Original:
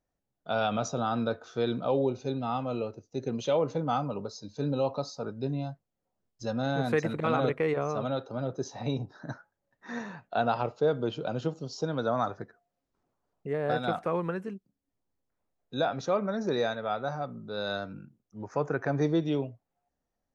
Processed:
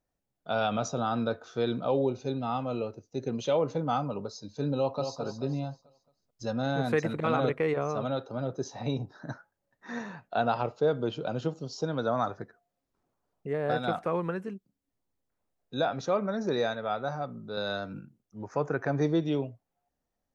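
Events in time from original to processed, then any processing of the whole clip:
4.77–5.20 s: echo throw 220 ms, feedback 40%, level -7.5 dB
17.57–18.00 s: three bands compressed up and down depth 70%

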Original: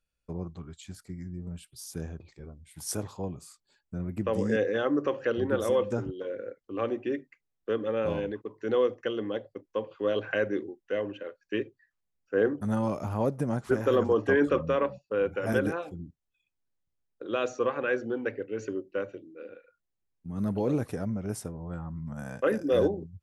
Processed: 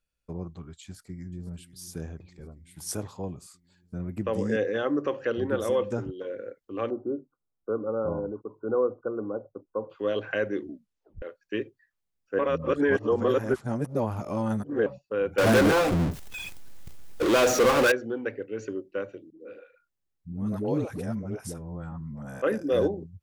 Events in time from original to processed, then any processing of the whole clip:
0.83–1.50 s: echo throw 490 ms, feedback 70%, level -15.5 dB
6.90–9.90 s: brick-wall FIR low-pass 1.5 kHz
10.59 s: tape stop 0.63 s
12.39–14.86 s: reverse
15.38–17.92 s: power-law waveshaper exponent 0.35
19.30–22.42 s: phase dispersion highs, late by 102 ms, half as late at 440 Hz

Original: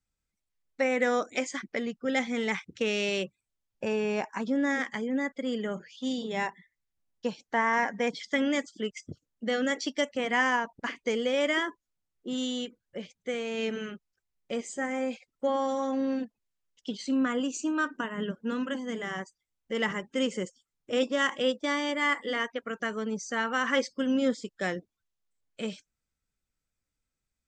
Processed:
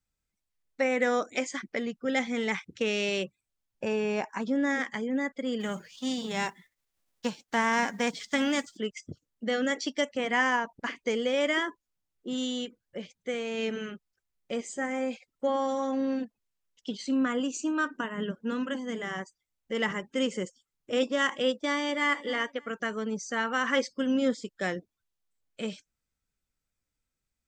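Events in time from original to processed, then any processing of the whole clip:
5.59–8.76 s: formants flattened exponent 0.6
21.60–22.13 s: echo throw 290 ms, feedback 25%, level -17.5 dB

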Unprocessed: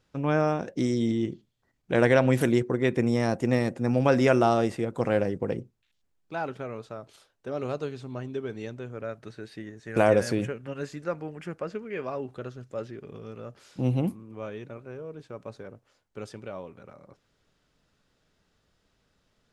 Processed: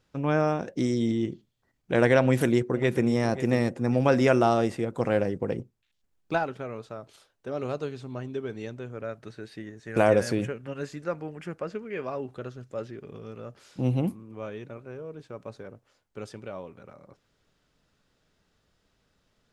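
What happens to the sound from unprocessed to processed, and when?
2.21–3.15 s: echo throw 540 ms, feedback 30%, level -13 dB
5.59–6.46 s: transient shaper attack +10 dB, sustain -2 dB

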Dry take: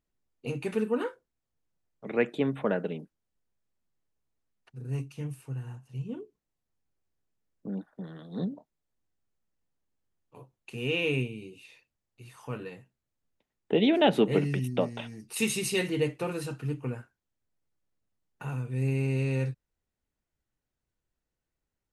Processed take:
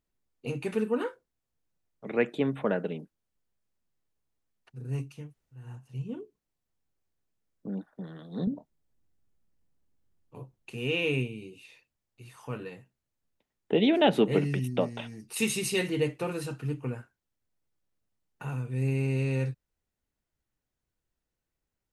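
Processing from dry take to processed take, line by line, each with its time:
5.22–5.63 s: room tone, crossfade 0.24 s
8.47–10.72 s: bass shelf 370 Hz +9.5 dB

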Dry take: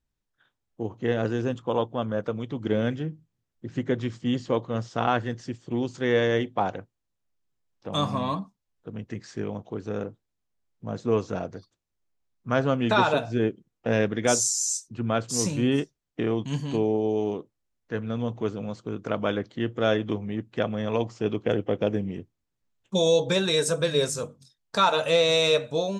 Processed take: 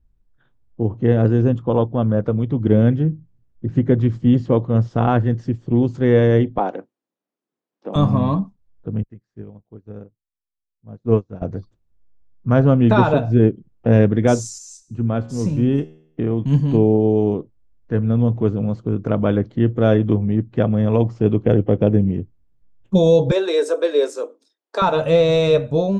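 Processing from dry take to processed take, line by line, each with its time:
6.58–7.96 s: high-pass 260 Hz 24 dB/octave
9.03–11.42 s: upward expansion 2.5:1, over -42 dBFS
14.58–16.45 s: feedback comb 78 Hz, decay 0.67 s, mix 50%
23.31–24.82 s: steep high-pass 310 Hz 48 dB/octave
whole clip: tilt EQ -4 dB/octave; trim +3 dB

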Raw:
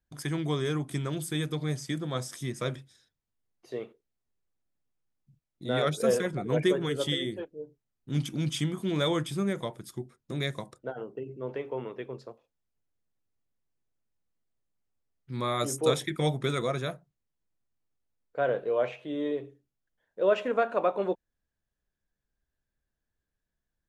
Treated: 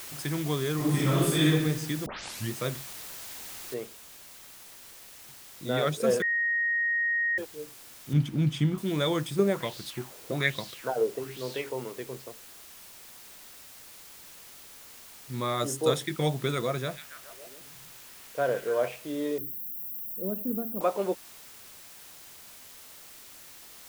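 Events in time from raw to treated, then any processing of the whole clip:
0.76–1.48 s: reverb throw, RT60 1.1 s, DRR -9 dB
2.06 s: tape start 0.46 s
3.74 s: noise floor step -42 dB -49 dB
6.22–7.38 s: bleep 1.87 kHz -24 dBFS
8.13–8.78 s: tone controls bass +6 dB, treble -10 dB
9.39–11.70 s: sweeping bell 1.2 Hz 430–4500 Hz +15 dB
15.55–16.02 s: band-stop 2.3 kHz
16.77–18.88 s: repeats whose band climbs or falls 139 ms, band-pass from 2.5 kHz, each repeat -0.7 oct, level -4 dB
19.38–20.81 s: FFT filter 130 Hz 0 dB, 210 Hz +10 dB, 400 Hz -8 dB, 690 Hz -18 dB, 1.3 kHz -23 dB, 1.9 kHz -28 dB, 4.1 kHz -29 dB, 7.6 kHz -25 dB, 13 kHz +15 dB

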